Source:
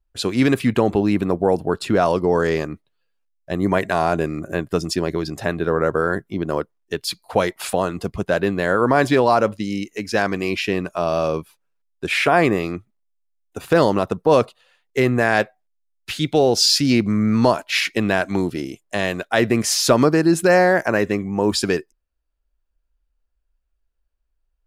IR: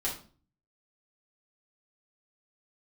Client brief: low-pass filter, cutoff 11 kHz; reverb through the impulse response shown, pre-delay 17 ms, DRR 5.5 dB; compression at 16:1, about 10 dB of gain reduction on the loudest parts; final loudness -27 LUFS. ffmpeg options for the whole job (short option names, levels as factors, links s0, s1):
-filter_complex "[0:a]lowpass=11000,acompressor=threshold=0.1:ratio=16,asplit=2[s0][s1];[1:a]atrim=start_sample=2205,adelay=17[s2];[s1][s2]afir=irnorm=-1:irlink=0,volume=0.299[s3];[s0][s3]amix=inputs=2:normalize=0,volume=0.794"